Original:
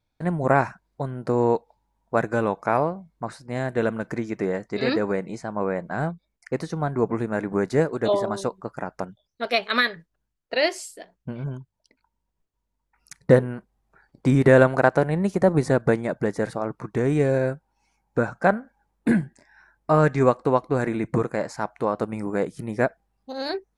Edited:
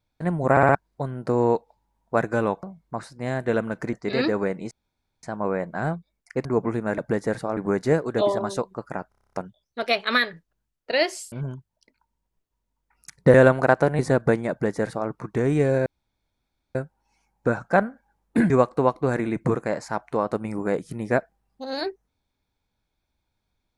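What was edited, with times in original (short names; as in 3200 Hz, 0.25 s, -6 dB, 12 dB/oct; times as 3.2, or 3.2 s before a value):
0.51 stutter in place 0.06 s, 4 plays
2.63–2.92 cut
4.22–4.61 cut
5.39 insert room tone 0.52 s
6.61–6.91 cut
8.96 stutter 0.03 s, 9 plays
10.95–11.35 cut
13.37–14.49 cut
15.14–15.59 cut
16.1–16.69 copy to 7.44
17.46 insert room tone 0.89 s
19.21–20.18 cut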